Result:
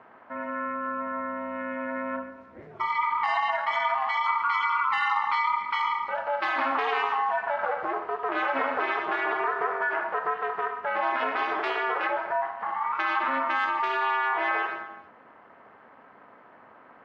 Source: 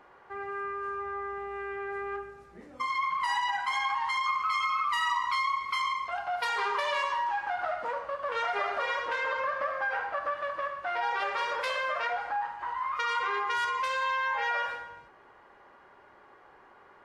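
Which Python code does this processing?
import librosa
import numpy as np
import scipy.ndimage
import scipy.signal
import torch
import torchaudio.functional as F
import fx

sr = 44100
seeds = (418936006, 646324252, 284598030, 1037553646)

y = x * np.sin(2.0 * np.pi * 140.0 * np.arange(len(x)) / sr)
y = fx.bandpass_edges(y, sr, low_hz=110.0, high_hz=2500.0)
y = F.gain(torch.from_numpy(y), 7.0).numpy()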